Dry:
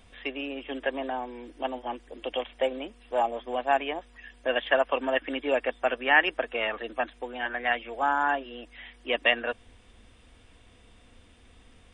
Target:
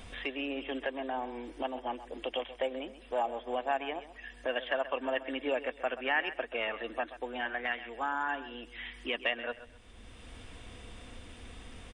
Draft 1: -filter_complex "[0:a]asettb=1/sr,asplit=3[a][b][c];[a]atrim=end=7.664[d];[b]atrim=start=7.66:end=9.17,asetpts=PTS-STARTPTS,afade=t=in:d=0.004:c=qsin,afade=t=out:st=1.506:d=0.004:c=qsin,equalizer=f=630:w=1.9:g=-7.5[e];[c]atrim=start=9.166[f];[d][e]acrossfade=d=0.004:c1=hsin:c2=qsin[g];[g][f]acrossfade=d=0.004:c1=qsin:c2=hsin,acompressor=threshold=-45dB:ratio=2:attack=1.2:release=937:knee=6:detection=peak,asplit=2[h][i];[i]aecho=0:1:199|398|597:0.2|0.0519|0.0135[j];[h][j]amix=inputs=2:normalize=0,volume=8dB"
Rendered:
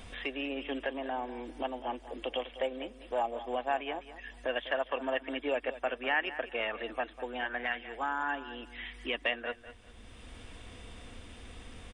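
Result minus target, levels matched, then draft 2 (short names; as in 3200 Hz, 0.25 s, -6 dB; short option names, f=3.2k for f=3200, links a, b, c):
echo 68 ms late
-filter_complex "[0:a]asettb=1/sr,asplit=3[a][b][c];[a]atrim=end=7.664[d];[b]atrim=start=7.66:end=9.17,asetpts=PTS-STARTPTS,afade=t=in:d=0.004:c=qsin,afade=t=out:st=1.506:d=0.004:c=qsin,equalizer=f=630:w=1.9:g=-7.5[e];[c]atrim=start=9.166[f];[d][e]acrossfade=d=0.004:c1=hsin:c2=qsin[g];[g][f]acrossfade=d=0.004:c1=qsin:c2=hsin,acompressor=threshold=-45dB:ratio=2:attack=1.2:release=937:knee=6:detection=peak,asplit=2[h][i];[i]aecho=0:1:131|262|393:0.2|0.0519|0.0135[j];[h][j]amix=inputs=2:normalize=0,volume=8dB"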